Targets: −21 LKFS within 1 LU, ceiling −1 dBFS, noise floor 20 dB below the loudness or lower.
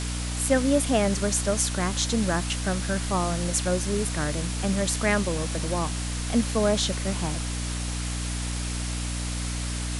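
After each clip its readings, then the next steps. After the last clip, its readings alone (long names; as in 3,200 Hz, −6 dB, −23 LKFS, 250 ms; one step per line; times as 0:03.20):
mains hum 60 Hz; hum harmonics up to 300 Hz; level of the hum −28 dBFS; background noise floor −30 dBFS; target noise floor −46 dBFS; integrated loudness −26.0 LKFS; sample peak −8.0 dBFS; target loudness −21.0 LKFS
→ mains-hum notches 60/120/180/240/300 Hz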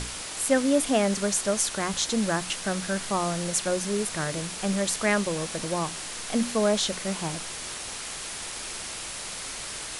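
mains hum none found; background noise floor −37 dBFS; target noise floor −48 dBFS
→ broadband denoise 11 dB, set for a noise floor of −37 dBFS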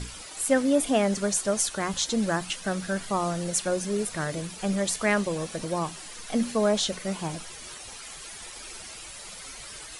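background noise floor −42 dBFS; target noise floor −47 dBFS
→ broadband denoise 6 dB, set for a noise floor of −42 dBFS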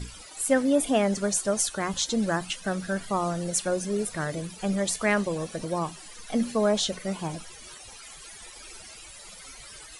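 background noise floor −46 dBFS; target noise floor −47 dBFS
→ broadband denoise 6 dB, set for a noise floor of −46 dBFS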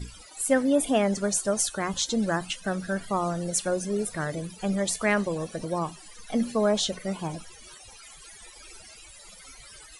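background noise floor −49 dBFS; integrated loudness −27.0 LKFS; sample peak −9.0 dBFS; target loudness −21.0 LKFS
→ level +6 dB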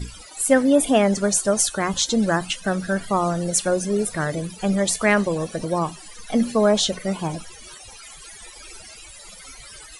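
integrated loudness −21.0 LKFS; sample peak −3.0 dBFS; background noise floor −43 dBFS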